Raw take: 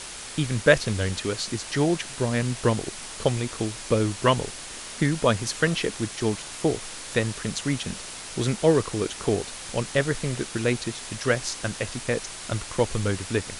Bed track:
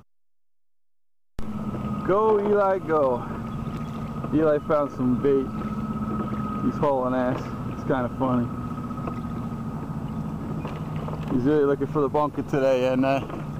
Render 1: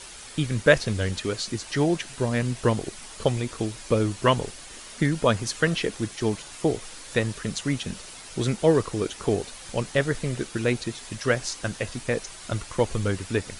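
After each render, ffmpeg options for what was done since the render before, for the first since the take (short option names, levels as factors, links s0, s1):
-af "afftdn=nr=7:nf=-39"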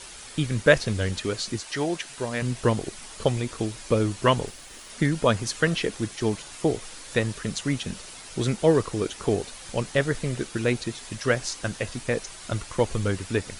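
-filter_complex "[0:a]asettb=1/sr,asplit=3[s0][s1][s2];[s0]atrim=end=1.604[s3];[s1]atrim=start=1.6:end=2.42,asetpts=PTS-STARTPTS,afade=t=in:d=0.004:c=qsin,afade=t=out:st=0.816:d=0.004:c=qsin,lowshelf=f=280:g=-11[s4];[s2]atrim=start=2.416[s5];[s3][s4]acrossfade=d=0.004:c1=hsin:c2=qsin[s6];[s6][s5]acrossfade=d=0.004:c1=qsin:c2=hsin,asettb=1/sr,asplit=3[s7][s8][s9];[s7]atrim=end=4.474[s10];[s8]atrim=start=4.47:end=4.9,asetpts=PTS-STARTPTS,afade=t=in:d=0.004:c=qsin,afade=t=out:st=0.426:d=0.004:c=qsin,aeval=exprs='sgn(val(0))*max(abs(val(0))-0.00188,0)':c=same[s11];[s9]atrim=start=4.896[s12];[s10][s11]acrossfade=d=0.004:c1=hsin:c2=qsin[s13];[s13][s12]acrossfade=d=0.004:c1=qsin:c2=hsin"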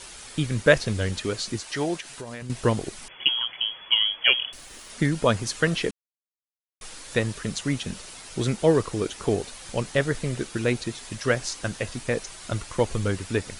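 -filter_complex "[0:a]asettb=1/sr,asplit=3[s0][s1][s2];[s0]atrim=end=2.004[s3];[s1]atrim=start=2:end=2.5,asetpts=PTS-STARTPTS,afade=t=in:d=0.004:c=qsin,afade=t=out:st=0.496:d=0.004:c=qsin,acompressor=threshold=0.0224:ratio=6:attack=3.2:release=140:knee=1:detection=peak[s4];[s2]atrim=start=2.496[s5];[s3][s4]acrossfade=d=0.004:c1=hsin:c2=qsin[s6];[s6][s5]acrossfade=d=0.004:c1=qsin:c2=hsin,asettb=1/sr,asplit=3[s7][s8][s9];[s7]atrim=end=3.084[s10];[s8]atrim=start=3.08:end=4.53,asetpts=PTS-STARTPTS,afade=t=in:d=0.004:c=qsin,afade=t=out:st=1.446:d=0.004:c=qsin,lowpass=f=2900:t=q:w=0.5098,lowpass=f=2900:t=q:w=0.6013,lowpass=f=2900:t=q:w=0.9,lowpass=f=2900:t=q:w=2.563,afreqshift=-3400[s11];[s9]atrim=start=4.526[s12];[s10][s11]acrossfade=d=0.004:c1=hsin:c2=qsin[s13];[s13][s12]acrossfade=d=0.004:c1=qsin:c2=hsin,asplit=3[s14][s15][s16];[s14]atrim=end=5.91,asetpts=PTS-STARTPTS,afade=t=out:st=5.906:d=0.004:c=hsin[s17];[s15]atrim=start=5.91:end=6.81,asetpts=PTS-STARTPTS,volume=0[s18];[s16]atrim=start=6.81,asetpts=PTS-STARTPTS,afade=t=in:d=0.004:c=hsin[s19];[s17][s18][s19]concat=n=3:v=0:a=1"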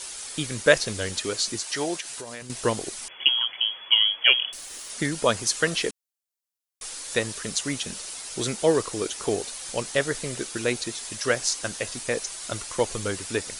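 -af "bass=f=250:g=-9,treble=f=4000:g=8"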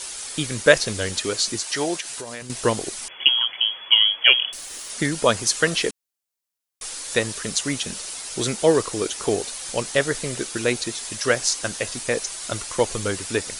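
-af "volume=1.5,alimiter=limit=0.891:level=0:latency=1"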